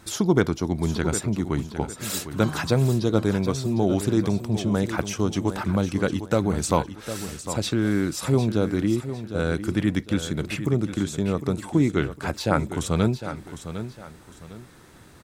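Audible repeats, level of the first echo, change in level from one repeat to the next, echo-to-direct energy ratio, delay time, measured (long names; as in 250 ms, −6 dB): 2, −11.0 dB, −10.0 dB, −10.5 dB, 755 ms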